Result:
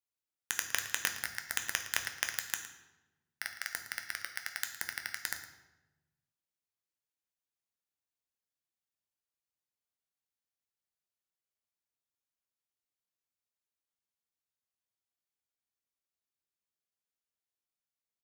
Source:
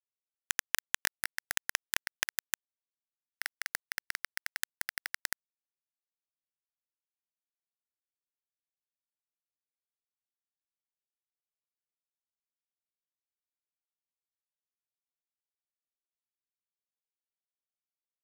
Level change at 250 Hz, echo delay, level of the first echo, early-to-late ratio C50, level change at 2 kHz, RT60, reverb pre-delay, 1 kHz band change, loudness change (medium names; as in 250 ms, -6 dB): +0.5 dB, 112 ms, -15.5 dB, 9.0 dB, -0.5 dB, 1.1 s, 3 ms, 0.0 dB, -0.5 dB